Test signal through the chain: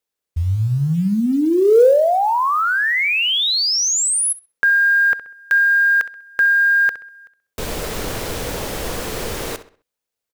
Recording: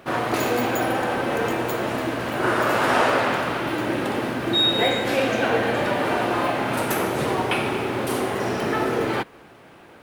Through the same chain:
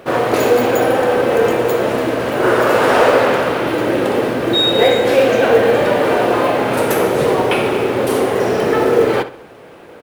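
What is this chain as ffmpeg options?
-filter_complex "[0:a]equalizer=f=480:w=2.4:g=9.5,asoftclip=type=tanh:threshold=-5.5dB,acrusher=bits=8:mode=log:mix=0:aa=0.000001,asplit=2[a][b];[b]adelay=65,lowpass=f=4.9k:p=1,volume=-13dB,asplit=2[c][d];[d]adelay=65,lowpass=f=4.9k:p=1,volume=0.36,asplit=2[e][f];[f]adelay=65,lowpass=f=4.9k:p=1,volume=0.36,asplit=2[g][h];[h]adelay=65,lowpass=f=4.9k:p=1,volume=0.36[i];[c][e][g][i]amix=inputs=4:normalize=0[j];[a][j]amix=inputs=2:normalize=0,volume=5dB"

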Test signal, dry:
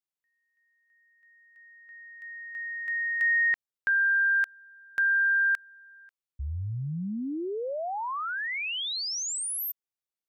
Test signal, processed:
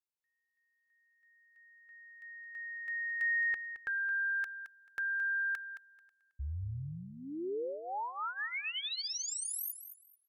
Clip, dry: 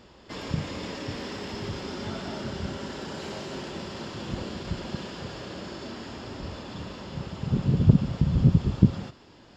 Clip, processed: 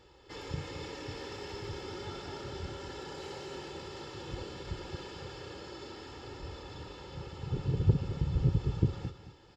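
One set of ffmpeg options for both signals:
-filter_complex "[0:a]aecho=1:1:2.3:0.72,asplit=2[a][b];[b]aecho=0:1:219|438|657:0.282|0.0592|0.0124[c];[a][c]amix=inputs=2:normalize=0,volume=-8.5dB"

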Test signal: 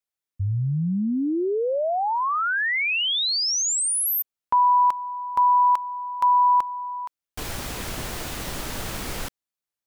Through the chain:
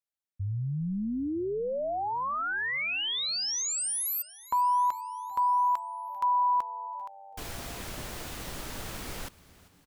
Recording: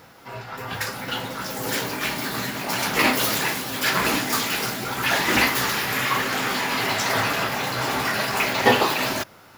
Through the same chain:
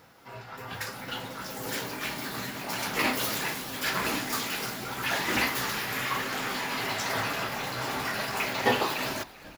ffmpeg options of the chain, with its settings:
-filter_complex "[0:a]asplit=6[a][b][c][d][e][f];[b]adelay=393,afreqshift=-100,volume=-20.5dB[g];[c]adelay=786,afreqshift=-200,volume=-25.1dB[h];[d]adelay=1179,afreqshift=-300,volume=-29.7dB[i];[e]adelay=1572,afreqshift=-400,volume=-34.2dB[j];[f]adelay=1965,afreqshift=-500,volume=-38.8dB[k];[a][g][h][i][j][k]amix=inputs=6:normalize=0,volume=-7.5dB"

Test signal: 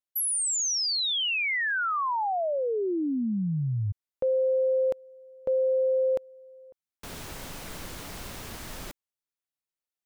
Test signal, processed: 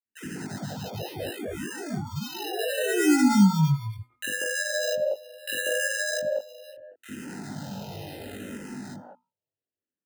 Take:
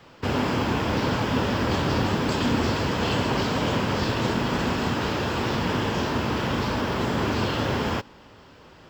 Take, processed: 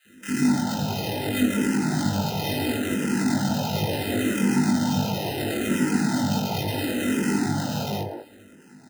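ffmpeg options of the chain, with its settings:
-filter_complex "[0:a]bandreject=f=60:t=h:w=6,bandreject=f=120:t=h:w=6,bandreject=f=180:t=h:w=6,bandreject=f=240:t=h:w=6,asplit=2[a][b];[b]acompressor=threshold=-33dB:ratio=6:release=175,volume=-1.5dB[c];[a][c]amix=inputs=2:normalize=0,flanger=delay=19:depth=6.6:speed=2.4,equalizer=f=250:w=0.94:g=12,acrusher=samples=39:mix=1:aa=0.000001,highpass=f=93:w=0.5412,highpass=f=93:w=1.3066,equalizer=f=940:w=1.5:g=-2,asplit=2[d][e];[e]adelay=20,volume=-3dB[f];[d][f]amix=inputs=2:normalize=0,acrossover=split=350|1300[g][h][i];[g]adelay=50[j];[h]adelay=190[k];[j][k][i]amix=inputs=3:normalize=0,dynaudnorm=f=270:g=13:m=4dB,asplit=2[l][m];[m]afreqshift=-0.72[n];[l][n]amix=inputs=2:normalize=1,volume=-4dB"

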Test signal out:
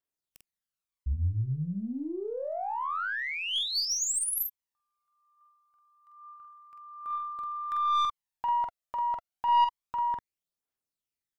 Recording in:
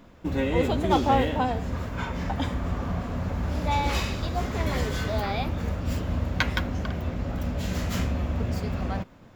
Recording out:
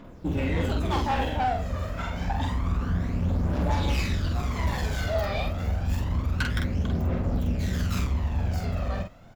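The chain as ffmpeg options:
-filter_complex "[0:a]aphaser=in_gain=1:out_gain=1:delay=1.7:decay=0.58:speed=0.28:type=triangular,aeval=exprs='(tanh(10*val(0)+0.1)-tanh(0.1))/10':c=same,asplit=2[a][b];[b]adelay=46,volume=-4dB[c];[a][c]amix=inputs=2:normalize=0,volume=-2dB"

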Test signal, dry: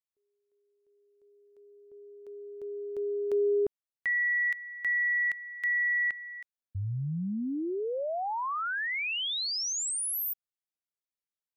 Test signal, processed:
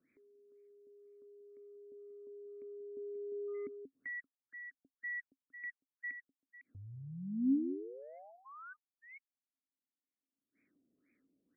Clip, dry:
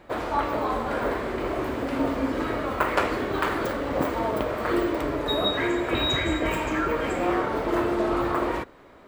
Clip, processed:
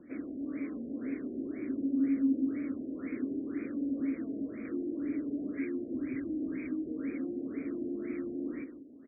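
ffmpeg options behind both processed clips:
-filter_complex "[0:a]acrossover=split=410|1600|3000[a][b][c][d];[b]asoftclip=type=tanh:threshold=-24.5dB[e];[a][e][c][d]amix=inputs=4:normalize=0,acrossover=split=2700[f][g];[g]acompressor=threshold=-39dB:ratio=4:attack=1:release=60[h];[f][h]amix=inputs=2:normalize=0,equalizer=f=2.8k:w=1:g=-8,aecho=1:1:184:0.266,volume=26.5dB,asoftclip=hard,volume=-26.5dB,asplit=3[i][j][k];[i]bandpass=f=270:t=q:w=8,volume=0dB[l];[j]bandpass=f=2.29k:t=q:w=8,volume=-6dB[m];[k]bandpass=f=3.01k:t=q:w=8,volume=-9dB[n];[l][m][n]amix=inputs=3:normalize=0,acompressor=mode=upward:threshold=-50dB:ratio=2.5:attack=2.8:release=62:knee=2.83:detection=peak,afftfilt=real='re*lt(b*sr/1024,730*pow(2600/730,0.5+0.5*sin(2*PI*2*pts/sr)))':imag='im*lt(b*sr/1024,730*pow(2600/730,0.5+0.5*sin(2*PI*2*pts/sr)))':win_size=1024:overlap=0.75,volume=5dB"

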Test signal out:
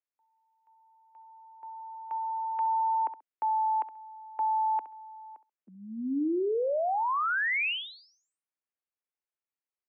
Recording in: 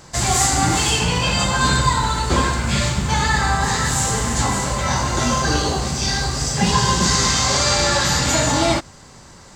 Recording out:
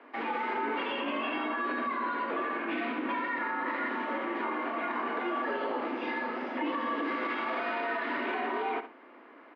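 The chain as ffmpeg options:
-af "aecho=1:1:67|134:0.158|0.0285,highpass=f=160:t=q:w=0.5412,highpass=f=160:t=q:w=1.307,lowpass=f=2.6k:t=q:w=0.5176,lowpass=f=2.6k:t=q:w=0.7071,lowpass=f=2.6k:t=q:w=1.932,afreqshift=110,alimiter=limit=-17.5dB:level=0:latency=1:release=61,volume=-6.5dB"

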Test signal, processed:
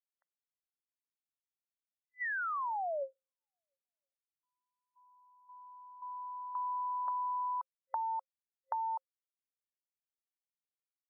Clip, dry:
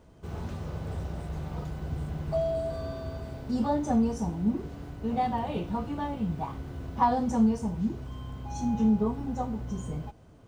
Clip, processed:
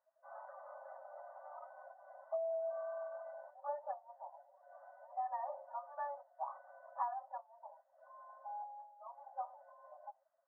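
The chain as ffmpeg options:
-af "acompressor=threshold=-33dB:ratio=12,afftdn=nr=21:nf=-48,afftfilt=real='re*between(b*sr/4096,530,2000)':imag='im*between(b*sr/4096,530,2000)':win_size=4096:overlap=0.75,volume=-1dB"

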